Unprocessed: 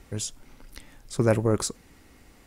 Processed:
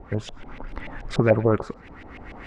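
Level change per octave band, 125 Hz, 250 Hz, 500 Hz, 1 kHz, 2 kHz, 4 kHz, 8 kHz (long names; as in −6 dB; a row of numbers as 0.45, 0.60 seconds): +2.5 dB, +3.0 dB, +4.0 dB, +5.0 dB, +5.5 dB, −3.0 dB, below −15 dB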